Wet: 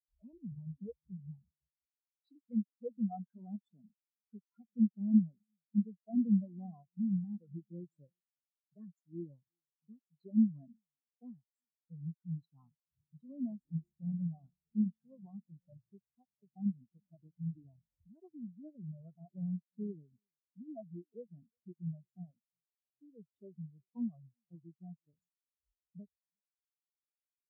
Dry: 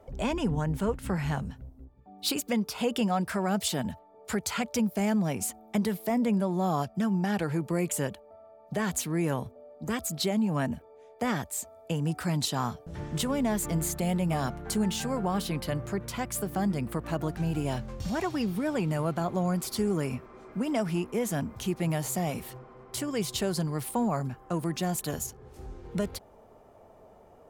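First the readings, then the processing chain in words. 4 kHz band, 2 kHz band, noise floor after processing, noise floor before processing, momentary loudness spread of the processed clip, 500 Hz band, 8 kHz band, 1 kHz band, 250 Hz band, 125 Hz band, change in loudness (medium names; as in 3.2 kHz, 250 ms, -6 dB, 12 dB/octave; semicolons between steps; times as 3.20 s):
under -40 dB, under -40 dB, under -85 dBFS, -55 dBFS, 23 LU, -22.5 dB, under -40 dB, under -25 dB, -7.0 dB, -12.0 dB, -7.5 dB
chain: echo from a far wall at 61 m, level -14 dB; spectral contrast expander 4:1; trim -1 dB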